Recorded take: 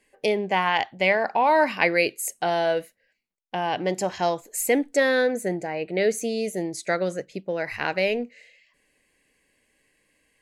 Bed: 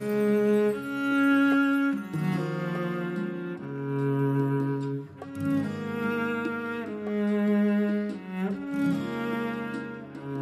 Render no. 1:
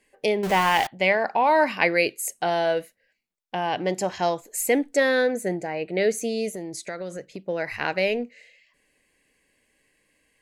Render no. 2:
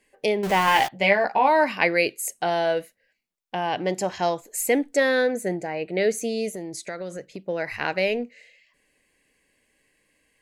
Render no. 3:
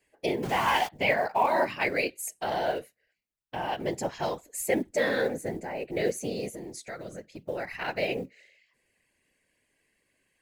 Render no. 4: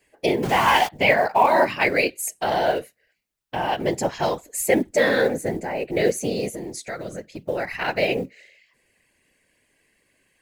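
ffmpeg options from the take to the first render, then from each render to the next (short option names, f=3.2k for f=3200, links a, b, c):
-filter_complex "[0:a]asettb=1/sr,asplit=3[a][b][c];[a]atrim=end=0.434[d];[b]atrim=start=0.43:end=0.87,asetpts=PTS-STARTPTS,afade=t=in:d=0.004:c=qsin,afade=t=out:st=0.436:d=0.004:c=qsin,aeval=exprs='val(0)+0.5*0.0596*sgn(val(0))':c=same[e];[c]atrim=start=0.866[f];[d][e]acrossfade=d=0.004:c1=hsin:c2=qsin[g];[g][f]acrossfade=d=0.004:c1=qsin:c2=hsin,asettb=1/sr,asplit=3[h][i][j];[h]atrim=end=6.534[k];[i]atrim=start=6.53:end=7.45,asetpts=PTS-STARTPTS,afade=t=in:d=0.004:c=qsin,afade=t=out:st=0.916:d=0.004:c=qsin,acompressor=threshold=-30dB:ratio=4:attack=3.2:release=140:knee=1:detection=peak[l];[j]atrim=start=7.446[m];[k][l]acrossfade=d=0.004:c1=hsin:c2=qsin[n];[n][m]acrossfade=d=0.004:c1=qsin:c2=hsin"
-filter_complex "[0:a]asettb=1/sr,asplit=3[a][b][c];[a]atrim=end=0.664[d];[b]atrim=start=0.66:end=1.48,asetpts=PTS-STARTPTS,afade=t=in:d=0.004:c=qsin,afade=t=out:st=0.816:d=0.004:c=qsin,asplit=2[e][f];[f]adelay=15,volume=-3.5dB[g];[e][g]amix=inputs=2:normalize=0,atrim=end_sample=36162[h];[c]atrim=start=1.476[i];[d][h]acrossfade=d=0.004:c1=hsin:c2=qsin[j];[j][i]acrossfade=d=0.004:c1=qsin:c2=hsin"
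-af "acrusher=bits=8:mode=log:mix=0:aa=0.000001,afftfilt=real='hypot(re,im)*cos(2*PI*random(0))':imag='hypot(re,im)*sin(2*PI*random(1))':win_size=512:overlap=0.75"
-af "volume=7.5dB"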